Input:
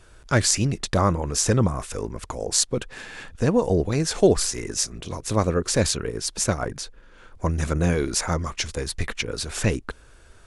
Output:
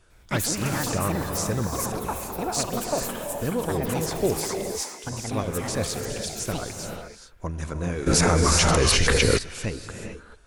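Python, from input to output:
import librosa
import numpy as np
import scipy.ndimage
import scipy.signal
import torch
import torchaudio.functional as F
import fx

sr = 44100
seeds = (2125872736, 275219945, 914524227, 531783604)

y = fx.echo_pitch(x, sr, ms=101, semitones=7, count=2, db_per_echo=-3.0)
y = fx.highpass(y, sr, hz=430.0, slope=12, at=(4.37, 5.04))
y = fx.rev_gated(y, sr, seeds[0], gate_ms=460, shape='rising', drr_db=4.0)
y = fx.env_flatten(y, sr, amount_pct=100, at=(8.06, 9.37), fade=0.02)
y = y * 10.0 ** (-7.5 / 20.0)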